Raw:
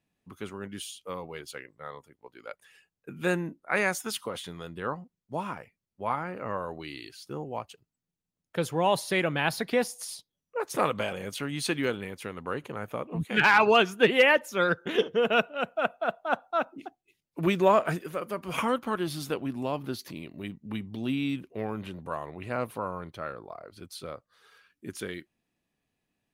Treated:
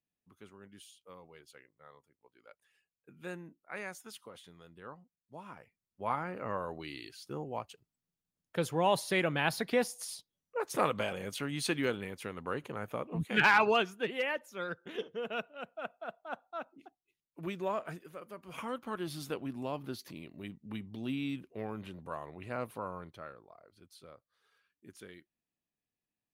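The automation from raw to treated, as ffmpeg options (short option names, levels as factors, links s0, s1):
-af "volume=1.5,afade=t=in:st=5.42:d=0.72:silence=0.251189,afade=t=out:st=13.45:d=0.58:silence=0.316228,afade=t=in:st=18.58:d=0.57:silence=0.446684,afade=t=out:st=22.98:d=0.46:silence=0.398107"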